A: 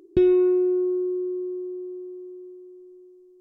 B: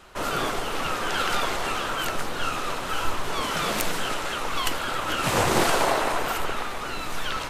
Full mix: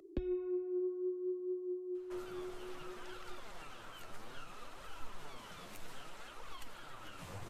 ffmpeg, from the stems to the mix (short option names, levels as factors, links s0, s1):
-filter_complex "[0:a]acrossover=split=120[s0][s1];[s1]acompressor=threshold=0.0501:ratio=6[s2];[s0][s2]amix=inputs=2:normalize=0,volume=0.891[s3];[1:a]acrossover=split=160[s4][s5];[s5]acompressor=threshold=0.0316:ratio=6[s6];[s4][s6]amix=inputs=2:normalize=0,adelay=1950,volume=0.168[s7];[s3][s7]amix=inputs=2:normalize=0,acrossover=split=120[s8][s9];[s9]acompressor=threshold=0.0126:ratio=2[s10];[s8][s10]amix=inputs=2:normalize=0,flanger=delay=1.5:depth=10:regen=33:speed=0.62:shape=triangular"